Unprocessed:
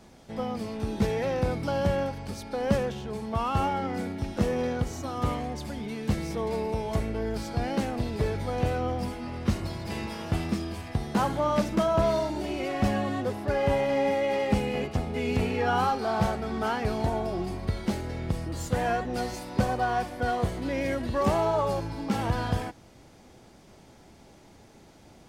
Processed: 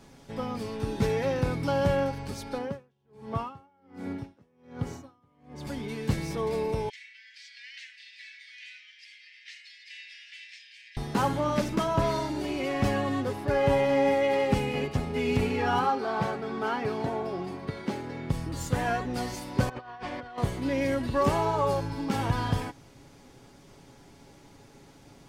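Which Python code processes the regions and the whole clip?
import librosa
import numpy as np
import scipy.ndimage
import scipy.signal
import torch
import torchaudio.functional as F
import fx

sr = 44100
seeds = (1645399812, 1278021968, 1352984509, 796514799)

y = fx.chain(x, sr, fx.highpass(hz=81.0, slope=12),
    fx.high_shelf(hz=2700.0, db=-8.5),
    fx.tremolo_db(hz=1.3, depth_db=38), at=(2.58, 5.67))
y = fx.chain(y, sr, fx.steep_highpass(hz=1800.0, slope=72),
    fx.air_absorb(metres=150.0), at=(6.89, 10.97))
y = fx.chain(y, sr, fx.highpass(hz=170.0, slope=12),
    fx.high_shelf(hz=4900.0, db=-11.5), at=(15.79, 18.3))
y = fx.chain(y, sr, fx.lowpass(hz=3500.0, slope=12),
    fx.low_shelf(hz=370.0, db=-9.5),
    fx.over_compress(threshold_db=-39.0, ratio=-1.0), at=(19.69, 20.38))
y = fx.peak_eq(y, sr, hz=670.0, db=-5.5, octaves=0.31)
y = y + 0.43 * np.pad(y, (int(7.2 * sr / 1000.0), 0))[:len(y)]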